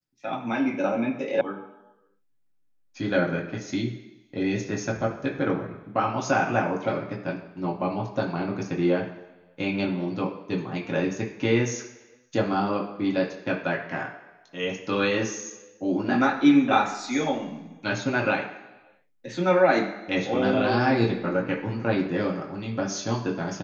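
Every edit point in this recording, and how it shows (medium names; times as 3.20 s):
1.41 s: sound stops dead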